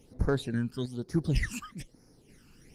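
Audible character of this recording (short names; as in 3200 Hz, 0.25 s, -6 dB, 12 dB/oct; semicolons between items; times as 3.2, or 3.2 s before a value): phasing stages 12, 1.1 Hz, lowest notch 620–3100 Hz; random-step tremolo; Opus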